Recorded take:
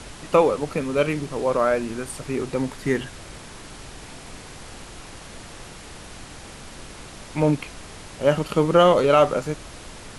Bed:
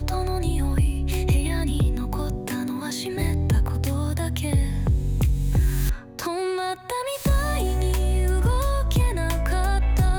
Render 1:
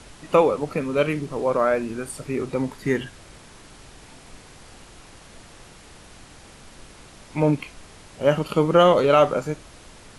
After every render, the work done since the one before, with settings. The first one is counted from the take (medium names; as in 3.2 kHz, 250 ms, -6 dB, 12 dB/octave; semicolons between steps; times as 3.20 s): noise print and reduce 6 dB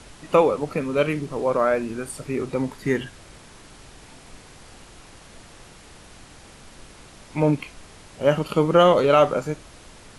no audible change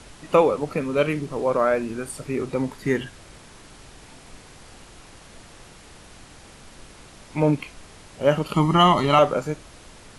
8.54–9.19 s: comb 1 ms, depth 95%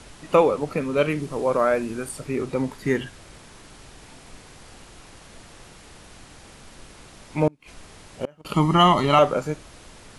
1.19–2.09 s: treble shelf 8.9 kHz +7 dB; 7.47–8.45 s: inverted gate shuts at -13 dBFS, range -31 dB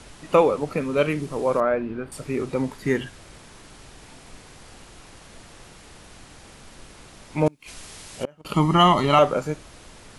1.60–2.12 s: distance through air 390 m; 7.46–8.24 s: treble shelf 2.6 kHz +10.5 dB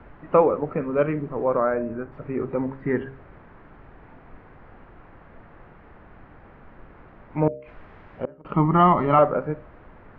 low-pass 1.8 kHz 24 dB/octave; de-hum 67.26 Hz, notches 9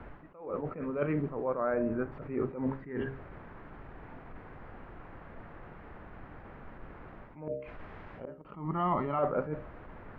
reverse; compression 16:1, threshold -26 dBFS, peak gain reduction 15.5 dB; reverse; attacks held to a fixed rise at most 110 dB/s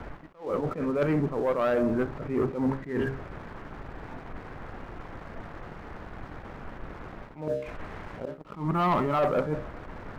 waveshaping leveller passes 2; attacks held to a fixed rise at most 200 dB/s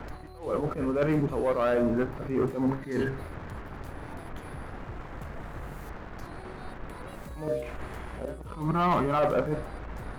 add bed -23 dB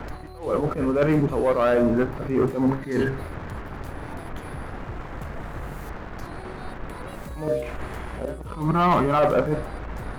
trim +5.5 dB